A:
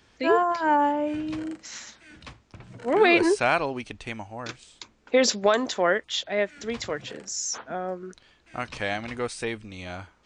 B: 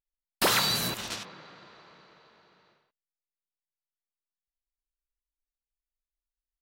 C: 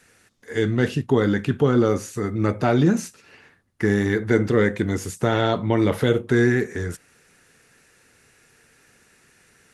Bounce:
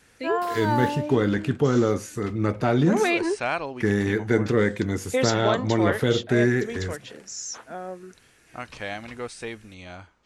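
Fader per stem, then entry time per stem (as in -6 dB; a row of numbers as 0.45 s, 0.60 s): -4.0 dB, -18.5 dB, -2.5 dB; 0.00 s, 0.00 s, 0.00 s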